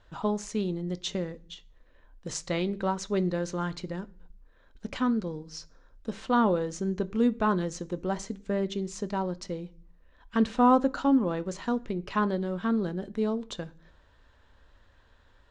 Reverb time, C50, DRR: 0.45 s, 22.5 dB, 11.5 dB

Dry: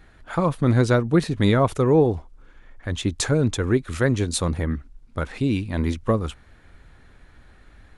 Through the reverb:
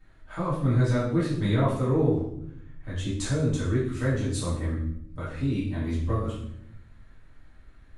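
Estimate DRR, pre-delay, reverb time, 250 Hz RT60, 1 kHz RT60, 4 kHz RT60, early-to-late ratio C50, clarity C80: -10.0 dB, 3 ms, 0.75 s, 1.2 s, 0.65 s, 0.60 s, 3.0 dB, 7.0 dB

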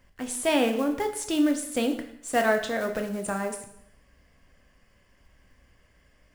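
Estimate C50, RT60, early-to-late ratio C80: 10.0 dB, 0.75 s, 12.5 dB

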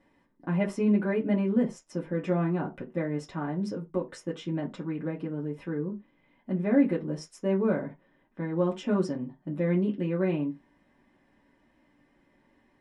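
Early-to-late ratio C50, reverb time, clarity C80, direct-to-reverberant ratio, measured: 15.0 dB, not exponential, 23.0 dB, -3.0 dB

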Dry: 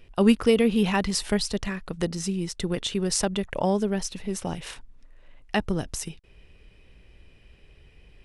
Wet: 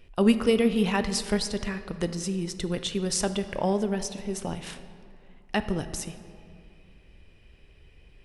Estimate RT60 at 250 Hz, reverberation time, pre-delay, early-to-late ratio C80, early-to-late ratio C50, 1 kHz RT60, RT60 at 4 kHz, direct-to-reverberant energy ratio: 2.6 s, 2.4 s, 6 ms, 13.0 dB, 11.5 dB, 2.3 s, 1.3 s, 10.0 dB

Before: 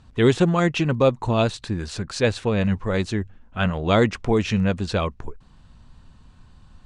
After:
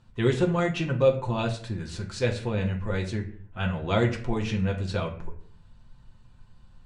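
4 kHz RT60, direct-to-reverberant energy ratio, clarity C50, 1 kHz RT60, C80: 0.35 s, 0.5 dB, 11.5 dB, 0.50 s, 15.0 dB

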